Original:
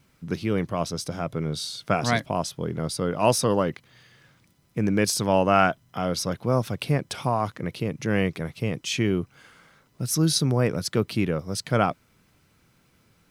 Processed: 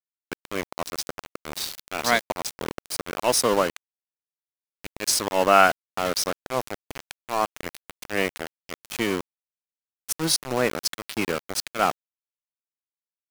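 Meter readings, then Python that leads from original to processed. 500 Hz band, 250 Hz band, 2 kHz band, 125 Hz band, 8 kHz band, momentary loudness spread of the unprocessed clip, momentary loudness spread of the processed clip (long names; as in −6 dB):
−1.0 dB, −6.5 dB, +3.5 dB, −14.0 dB, +3.0 dB, 9 LU, 18 LU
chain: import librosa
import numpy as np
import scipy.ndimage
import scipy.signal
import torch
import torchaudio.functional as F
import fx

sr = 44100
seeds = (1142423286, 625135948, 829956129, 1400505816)

y = scipy.signal.sosfilt(scipy.signal.butter(2, 270.0, 'highpass', fs=sr, output='sos'), x)
y = fx.low_shelf(y, sr, hz=440.0, db=-5.0)
y = fx.auto_swell(y, sr, attack_ms=140.0)
y = np.where(np.abs(y) >= 10.0 ** (-29.0 / 20.0), y, 0.0)
y = y * 10.0 ** (5.0 / 20.0)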